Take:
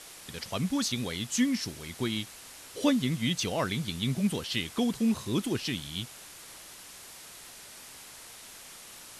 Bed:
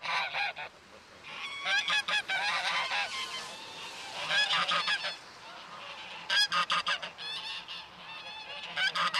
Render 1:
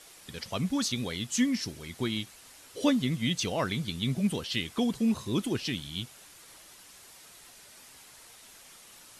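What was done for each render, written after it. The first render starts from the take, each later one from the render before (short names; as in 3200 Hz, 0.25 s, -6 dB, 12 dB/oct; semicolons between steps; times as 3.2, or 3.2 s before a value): denoiser 6 dB, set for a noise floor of -48 dBFS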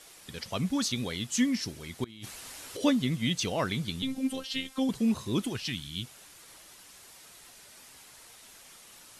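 2.04–2.77 negative-ratio compressor -44 dBFS; 4.02–4.89 robotiser 264 Hz; 5.49–6.03 bell 260 Hz -> 880 Hz -11 dB 1.2 oct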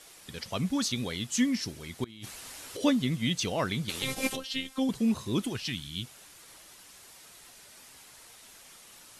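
3.88–4.35 spectral limiter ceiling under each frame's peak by 26 dB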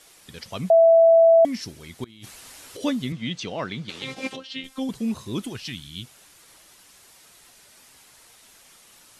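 0.7–1.45 bleep 661 Hz -10.5 dBFS; 3.12–4.64 BPF 120–4700 Hz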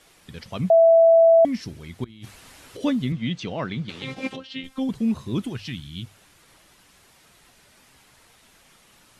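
tone controls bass +6 dB, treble -7 dB; notches 50/100 Hz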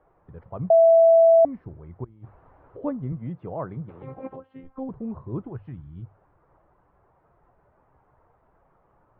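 LPF 1100 Hz 24 dB/oct; bell 230 Hz -10.5 dB 0.83 oct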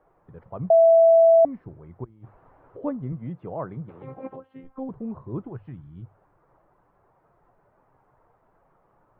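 bell 62 Hz -14 dB 0.65 oct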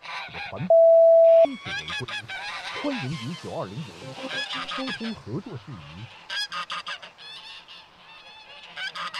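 add bed -3 dB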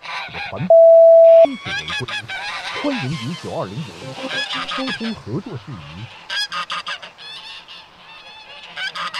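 gain +7 dB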